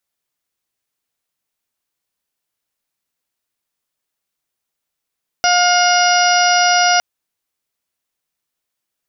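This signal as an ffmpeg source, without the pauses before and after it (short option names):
-f lavfi -i "aevalsrc='0.211*sin(2*PI*712*t)+0.15*sin(2*PI*1424*t)+0.075*sin(2*PI*2136*t)+0.0841*sin(2*PI*2848*t)+0.0251*sin(2*PI*3560*t)+0.0299*sin(2*PI*4272*t)+0.1*sin(2*PI*4984*t)+0.112*sin(2*PI*5696*t)':d=1.56:s=44100"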